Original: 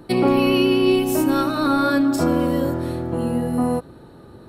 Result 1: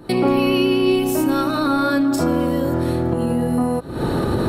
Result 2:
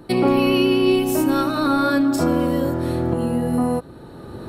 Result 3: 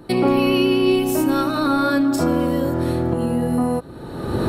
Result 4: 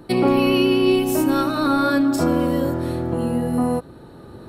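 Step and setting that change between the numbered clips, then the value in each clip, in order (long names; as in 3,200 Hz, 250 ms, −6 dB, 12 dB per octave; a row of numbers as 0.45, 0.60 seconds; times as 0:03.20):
camcorder AGC, rising by: 88, 14, 36, 5.6 dB per second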